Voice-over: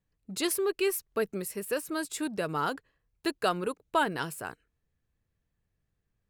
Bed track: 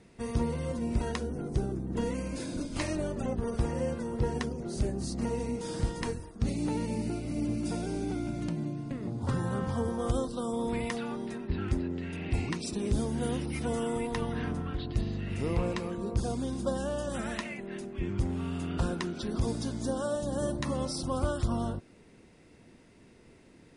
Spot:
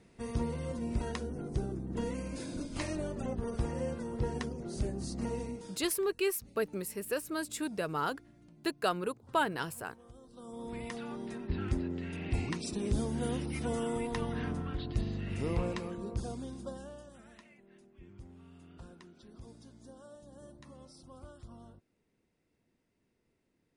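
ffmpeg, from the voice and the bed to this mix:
-filter_complex "[0:a]adelay=5400,volume=-3dB[a];[1:a]volume=19dB,afade=t=out:st=5.37:d=0.46:silence=0.0841395,afade=t=in:st=10.21:d=1.28:silence=0.0707946,afade=t=out:st=15.5:d=1.66:silence=0.11885[b];[a][b]amix=inputs=2:normalize=0"

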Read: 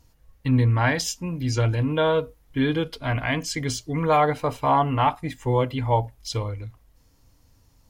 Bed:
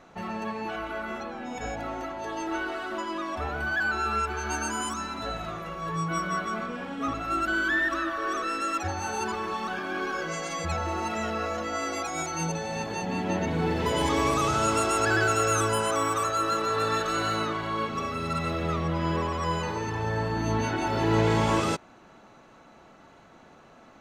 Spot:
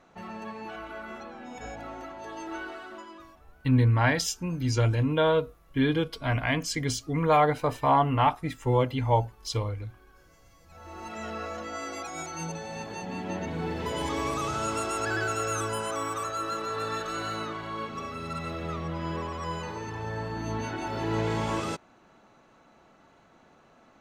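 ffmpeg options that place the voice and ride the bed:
-filter_complex "[0:a]adelay=3200,volume=-2dB[a];[1:a]volume=17.5dB,afade=t=out:st=2.63:d=0.78:silence=0.0707946,afade=t=in:st=10.69:d=0.63:silence=0.0668344[b];[a][b]amix=inputs=2:normalize=0"

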